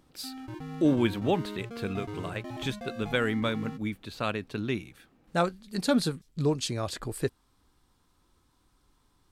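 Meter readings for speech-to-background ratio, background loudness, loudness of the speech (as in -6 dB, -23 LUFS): 9.5 dB, -40.5 LUFS, -31.0 LUFS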